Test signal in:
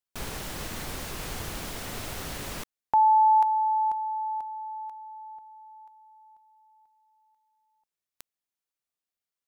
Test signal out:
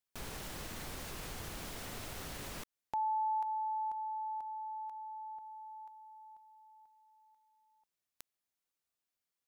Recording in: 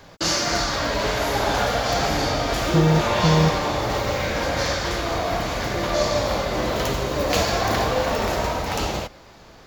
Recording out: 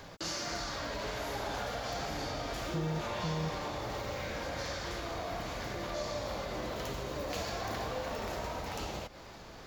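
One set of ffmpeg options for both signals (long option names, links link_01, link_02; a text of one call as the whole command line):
ffmpeg -i in.wav -af "acompressor=threshold=-45dB:ratio=2:attack=0.88:release=210:detection=peak" out.wav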